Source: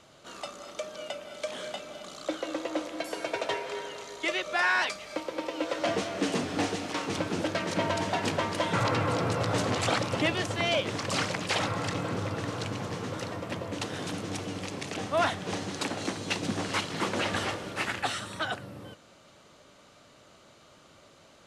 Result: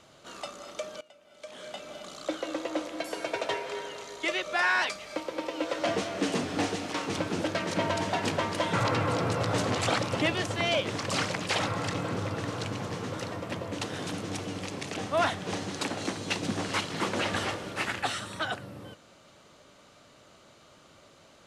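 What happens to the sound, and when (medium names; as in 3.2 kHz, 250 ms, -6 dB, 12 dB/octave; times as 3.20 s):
1.01–1.90 s: fade in quadratic, from -20 dB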